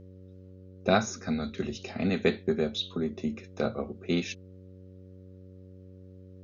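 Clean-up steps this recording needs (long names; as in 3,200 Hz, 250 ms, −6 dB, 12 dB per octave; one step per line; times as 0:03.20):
hum removal 93.3 Hz, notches 6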